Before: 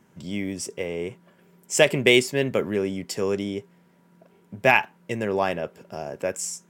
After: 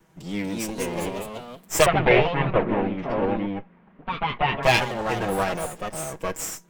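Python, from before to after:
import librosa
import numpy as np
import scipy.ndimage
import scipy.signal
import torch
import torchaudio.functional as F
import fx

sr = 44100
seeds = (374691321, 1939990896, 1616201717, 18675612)

y = fx.lower_of_two(x, sr, delay_ms=6.2)
y = fx.echo_pitch(y, sr, ms=263, semitones=2, count=3, db_per_echo=-3.0)
y = fx.lowpass(y, sr, hz=2600.0, slope=24, at=(1.86, 4.63))
y = F.gain(torch.from_numpy(y), 1.0).numpy()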